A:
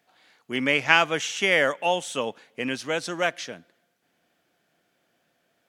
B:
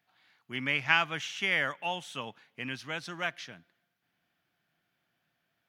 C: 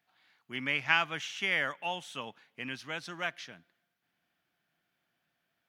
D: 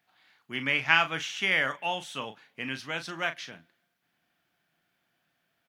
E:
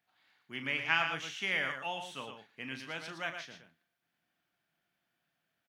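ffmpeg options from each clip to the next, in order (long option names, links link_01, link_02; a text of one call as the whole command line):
ffmpeg -i in.wav -af "equalizer=frequency=125:width_type=o:width=1:gain=4,equalizer=frequency=250:width_type=o:width=1:gain=-4,equalizer=frequency=500:width_type=o:width=1:gain=-11,equalizer=frequency=8000:width_type=o:width=1:gain=-11,volume=-5dB" out.wav
ffmpeg -i in.wav -af "equalizer=frequency=110:width_type=o:width=1.1:gain=-4,volume=-1.5dB" out.wav
ffmpeg -i in.wav -filter_complex "[0:a]asplit=2[link_01][link_02];[link_02]adelay=37,volume=-10dB[link_03];[link_01][link_03]amix=inputs=2:normalize=0,volume=4dB" out.wav
ffmpeg -i in.wav -af "aecho=1:1:116:0.447,volume=-7.5dB" out.wav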